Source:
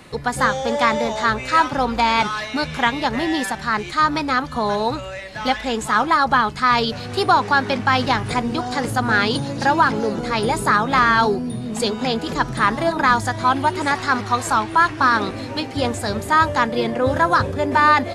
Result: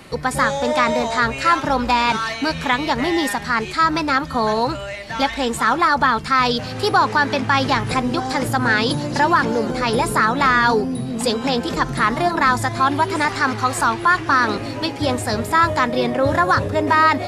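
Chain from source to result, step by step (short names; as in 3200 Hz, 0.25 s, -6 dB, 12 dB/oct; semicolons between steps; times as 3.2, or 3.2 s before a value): wide varispeed 1.05×; in parallel at -1 dB: limiter -11.5 dBFS, peak gain reduction 7.5 dB; on the sum: gain -3.5 dB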